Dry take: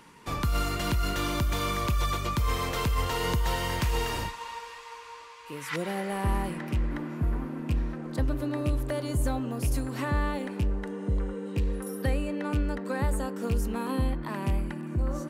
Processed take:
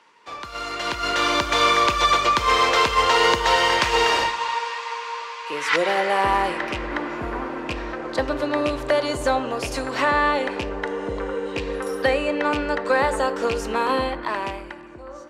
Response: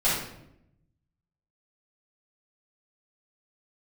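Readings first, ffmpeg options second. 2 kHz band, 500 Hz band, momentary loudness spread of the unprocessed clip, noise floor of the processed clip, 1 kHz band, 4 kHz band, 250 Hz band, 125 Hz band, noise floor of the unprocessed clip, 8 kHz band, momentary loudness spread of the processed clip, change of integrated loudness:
+14.0 dB, +11.5 dB, 6 LU, -39 dBFS, +13.5 dB, +13.0 dB, +2.5 dB, -8.0 dB, -45 dBFS, +6.5 dB, 12 LU, +8.5 dB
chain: -filter_complex "[0:a]dynaudnorm=f=120:g=17:m=16.5dB,acrossover=split=380 6800:gain=0.0708 1 0.0631[a][b][c];[a][b][c]amix=inputs=3:normalize=0,asplit=2[d][e];[1:a]atrim=start_sample=2205[f];[e][f]afir=irnorm=-1:irlink=0,volume=-26.5dB[g];[d][g]amix=inputs=2:normalize=0,volume=-1dB"

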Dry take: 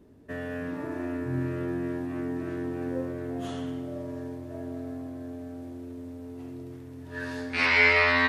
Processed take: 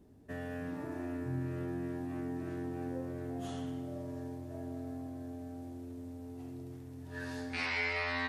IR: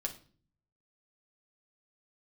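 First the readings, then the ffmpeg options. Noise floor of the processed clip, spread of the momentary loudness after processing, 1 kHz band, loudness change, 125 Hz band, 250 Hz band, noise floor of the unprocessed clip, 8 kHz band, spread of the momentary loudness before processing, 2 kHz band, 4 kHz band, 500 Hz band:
-47 dBFS, 12 LU, -10.5 dB, -11.0 dB, -4.5 dB, -6.5 dB, -43 dBFS, n/a, 19 LU, -13.5 dB, -11.0 dB, -9.5 dB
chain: -af "equalizer=f=770:w=6.9:g=8,acompressor=threshold=-30dB:ratio=2,bass=f=250:g=5,treble=f=4k:g=6,volume=-7.5dB"

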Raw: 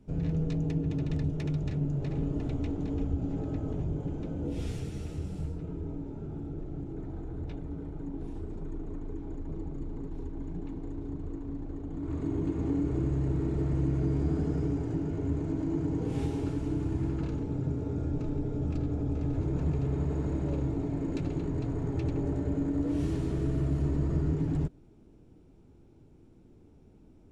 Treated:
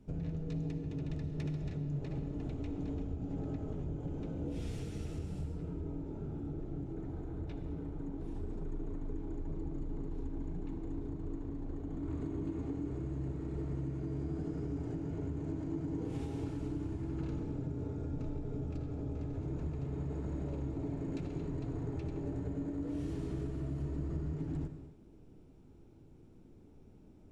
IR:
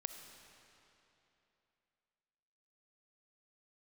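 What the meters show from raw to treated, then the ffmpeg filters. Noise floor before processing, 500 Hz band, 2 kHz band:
-56 dBFS, -6.5 dB, -6.5 dB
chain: -filter_complex "[0:a]acompressor=threshold=-33dB:ratio=6[a];[1:a]atrim=start_sample=2205,afade=t=out:st=0.34:d=0.01,atrim=end_sample=15435[b];[a][b]afir=irnorm=-1:irlink=0,volume=1dB"

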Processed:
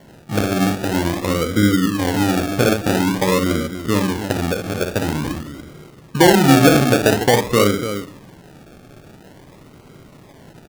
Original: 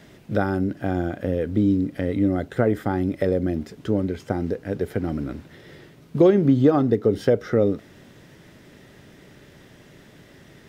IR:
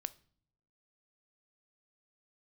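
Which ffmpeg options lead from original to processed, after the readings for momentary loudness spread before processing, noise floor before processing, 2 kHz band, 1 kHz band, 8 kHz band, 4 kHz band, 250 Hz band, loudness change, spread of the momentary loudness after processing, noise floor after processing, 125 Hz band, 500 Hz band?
11 LU, -50 dBFS, +14.0 dB, +11.5 dB, n/a, +21.0 dB, +4.5 dB, +5.5 dB, 13 LU, -45 dBFS, +5.0 dB, +3.5 dB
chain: -filter_complex "[0:a]aecho=1:1:58.31|288.6:0.501|0.355[a];[1:a]atrim=start_sample=2205,asetrate=22932,aresample=44100[b];[a][b]afir=irnorm=-1:irlink=0,acrusher=samples=35:mix=1:aa=0.000001:lfo=1:lforange=21:lforate=0.48,volume=2dB"

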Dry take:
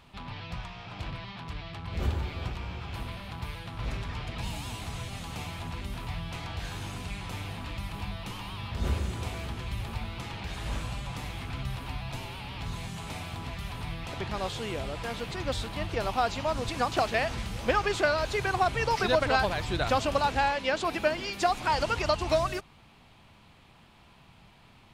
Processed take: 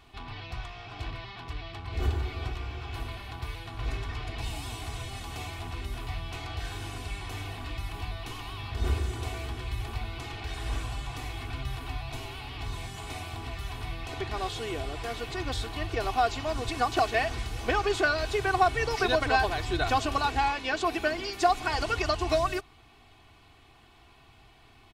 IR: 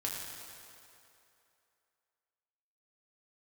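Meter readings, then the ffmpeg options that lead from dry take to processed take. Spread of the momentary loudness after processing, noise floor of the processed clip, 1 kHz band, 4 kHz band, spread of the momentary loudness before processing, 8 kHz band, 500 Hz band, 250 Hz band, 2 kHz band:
13 LU, -56 dBFS, +1.0 dB, +0.5 dB, 12 LU, +0.5 dB, -1.0 dB, -0.5 dB, +1.0 dB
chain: -af "aecho=1:1:2.7:0.73,volume=-1.5dB"

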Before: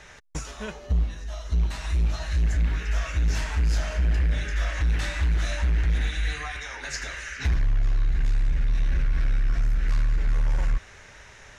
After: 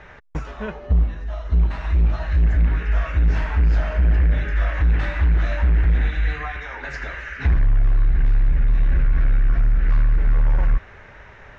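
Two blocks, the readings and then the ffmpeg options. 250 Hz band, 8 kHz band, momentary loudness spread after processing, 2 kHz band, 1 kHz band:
+6.0 dB, n/a, 11 LU, +3.5 dB, +5.5 dB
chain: -af "lowpass=1.9k,volume=6dB"

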